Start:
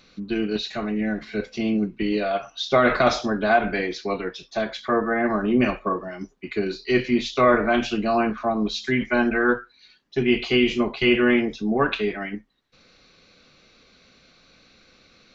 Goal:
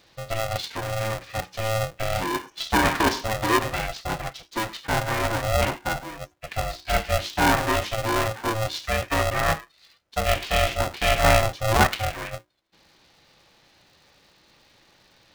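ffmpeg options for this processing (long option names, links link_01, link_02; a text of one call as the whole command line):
ffmpeg -i in.wav -filter_complex "[0:a]asettb=1/sr,asplit=3[link_01][link_02][link_03];[link_01]atrim=end=11.244[link_04];[link_02]atrim=start=11.24:end=11.87,asetpts=PTS-STARTPTS,afade=type=in:duration=0.004:curve=qsin,afade=type=out:start_time=0.626:duration=0.004:curve=qsin,equalizer=frequency=620:width=0.57:gain=7.5[link_05];[link_03]atrim=start=11.866[link_06];[link_04][link_05]acrossfade=duration=0.004:curve1=hsin:curve2=qsin[link_07];[link_07][link_06]acrossfade=duration=0.004:curve1=qsin:curve2=hsin,aeval=exprs='val(0)*sgn(sin(2*PI*330*n/s))':channel_layout=same,volume=-2.5dB" out.wav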